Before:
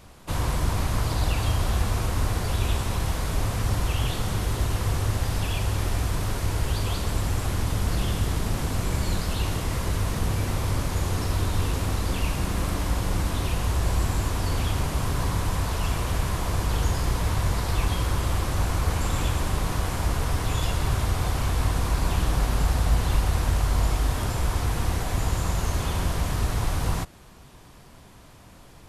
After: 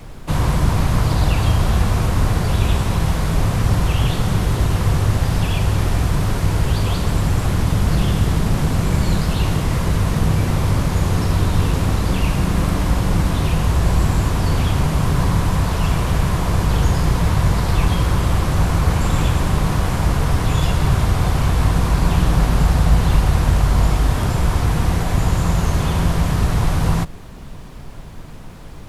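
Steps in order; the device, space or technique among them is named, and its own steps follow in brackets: car interior (bell 160 Hz +7.5 dB 0.63 oct; high shelf 4100 Hz -5 dB; brown noise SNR 18 dB); gain +7 dB

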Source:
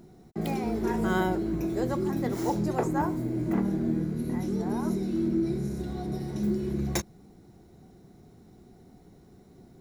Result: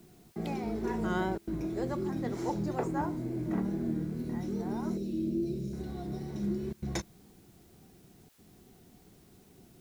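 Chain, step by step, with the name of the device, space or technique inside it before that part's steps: 4.97–5.73 Chebyshev band-stop 630–2500 Hz, order 4; worn cassette (LPF 7400 Hz 12 dB/oct; wow and flutter; level dips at 1.38/6.73/8.29, 92 ms -28 dB; white noise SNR 31 dB); gain -5 dB

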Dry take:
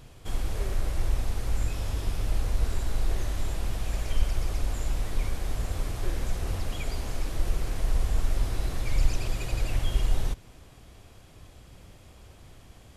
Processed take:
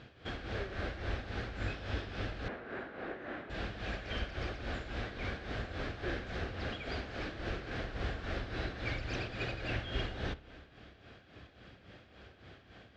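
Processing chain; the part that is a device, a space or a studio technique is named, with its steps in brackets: combo amplifier with spring reverb and tremolo (spring tank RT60 1.5 s, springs 30 ms, chirp 55 ms, DRR 13.5 dB; tremolo 3.6 Hz, depth 63%; speaker cabinet 100–4200 Hz, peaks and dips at 100 Hz -3 dB, 150 Hz -6 dB, 970 Hz -7 dB, 1600 Hz +8 dB); 2.48–3.5 three-band isolator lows -23 dB, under 170 Hz, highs -21 dB, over 2400 Hz; gain +2 dB

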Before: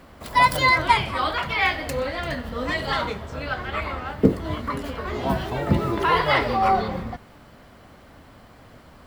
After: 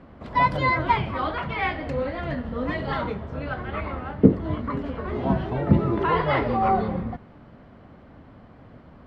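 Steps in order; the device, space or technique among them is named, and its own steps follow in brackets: phone in a pocket (LPF 3800 Hz 12 dB/oct; bell 180 Hz +6 dB 2.5 oct; high shelf 2500 Hz -9 dB); gain -2.5 dB

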